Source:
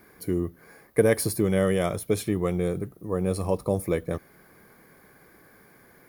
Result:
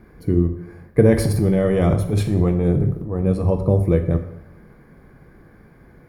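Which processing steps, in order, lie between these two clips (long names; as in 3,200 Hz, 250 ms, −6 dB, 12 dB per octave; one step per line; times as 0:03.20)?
RIAA equalisation playback
0:01.06–0:03.23: transient designer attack −10 dB, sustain +9 dB
dense smooth reverb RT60 0.84 s, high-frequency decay 0.75×, DRR 6 dB
level +1 dB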